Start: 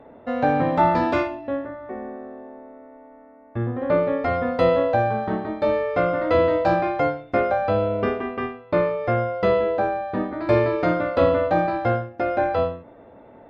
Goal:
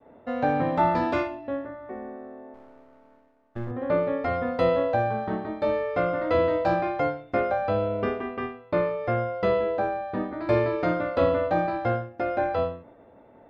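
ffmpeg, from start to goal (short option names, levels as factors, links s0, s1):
-filter_complex "[0:a]asettb=1/sr,asplit=3[s0][s1][s2];[s0]atrim=end=2.544[s3];[s1]atrim=start=2.54:end=3.71,asetpts=PTS-STARTPTS,afade=t=in:d=0.004:c=qsin,afade=t=out:st=1.166:d=0.004:c=qsin,aeval=exprs='if(lt(val(0),0),0.251*val(0),val(0))':c=same[s4];[s2]atrim=start=3.706[s5];[s3][s4]acrossfade=d=0.004:c1=hsin:c2=qsin[s6];[s6][s5]acrossfade=d=0.004:c1=qsin:c2=hsin,agate=range=0.0224:threshold=0.00631:ratio=3:detection=peak,volume=0.631"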